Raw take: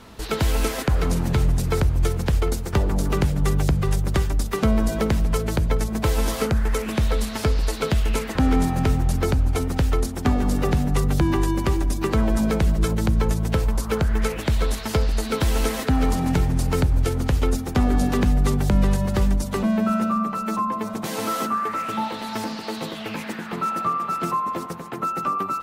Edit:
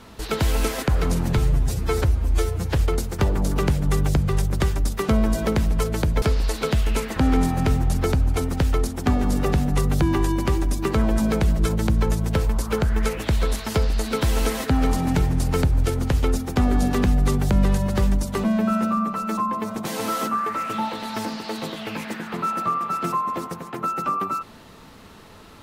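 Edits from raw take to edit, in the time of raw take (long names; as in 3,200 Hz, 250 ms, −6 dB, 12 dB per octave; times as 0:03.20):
0:01.38–0:02.30: time-stretch 1.5×
0:05.76–0:07.41: remove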